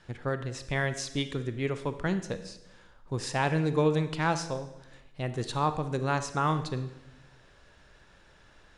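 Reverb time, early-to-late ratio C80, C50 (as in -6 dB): 0.95 s, 14.0 dB, 11.5 dB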